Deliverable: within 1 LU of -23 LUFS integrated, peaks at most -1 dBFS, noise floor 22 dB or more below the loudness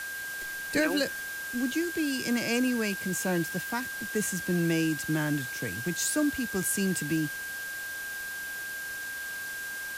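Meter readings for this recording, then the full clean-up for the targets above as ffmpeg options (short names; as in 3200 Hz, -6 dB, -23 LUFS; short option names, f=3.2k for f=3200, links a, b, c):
steady tone 1600 Hz; tone level -35 dBFS; noise floor -37 dBFS; noise floor target -52 dBFS; loudness -30.0 LUFS; peak -14.5 dBFS; loudness target -23.0 LUFS
-> -af "bandreject=f=1.6k:w=30"
-af "afftdn=nr=15:nf=-37"
-af "volume=7dB"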